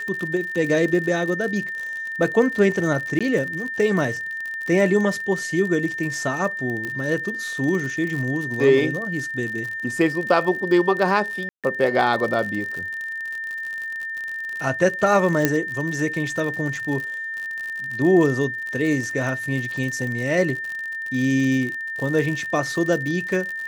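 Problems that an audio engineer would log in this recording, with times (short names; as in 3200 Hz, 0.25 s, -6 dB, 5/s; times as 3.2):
crackle 60/s -27 dBFS
tone 1800 Hz -27 dBFS
3.19–3.21 gap 16 ms
6.85 pop -17 dBFS
11.49–11.64 gap 0.147 s
15.45 pop -3 dBFS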